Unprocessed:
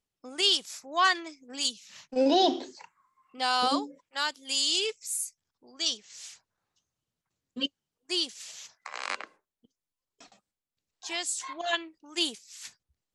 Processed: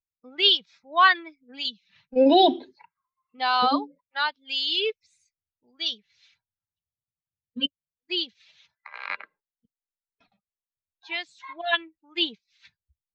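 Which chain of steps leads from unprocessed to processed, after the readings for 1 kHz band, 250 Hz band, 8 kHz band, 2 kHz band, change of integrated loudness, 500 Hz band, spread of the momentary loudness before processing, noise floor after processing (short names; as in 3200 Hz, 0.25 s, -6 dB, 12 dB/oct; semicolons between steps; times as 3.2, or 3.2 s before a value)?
+6.0 dB, +4.5 dB, under -25 dB, +6.0 dB, +4.5 dB, +5.5 dB, 20 LU, under -85 dBFS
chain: per-bin expansion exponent 1.5; elliptic low-pass 3900 Hz, stop band 80 dB; gain +8 dB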